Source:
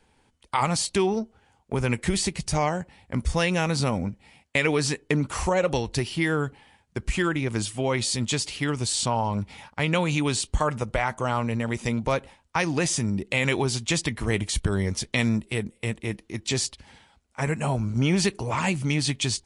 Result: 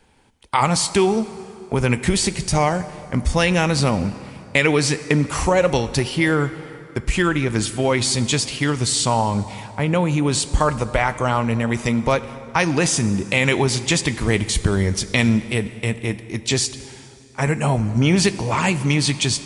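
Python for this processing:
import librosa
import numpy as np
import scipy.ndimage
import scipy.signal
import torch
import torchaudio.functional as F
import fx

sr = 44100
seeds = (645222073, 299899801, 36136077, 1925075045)

y = fx.peak_eq(x, sr, hz=4000.0, db=-10.5, octaves=2.6, at=(9.71, 10.31), fade=0.02)
y = fx.rev_plate(y, sr, seeds[0], rt60_s=3.0, hf_ratio=0.7, predelay_ms=0, drr_db=13.0)
y = y * librosa.db_to_amplitude(6.0)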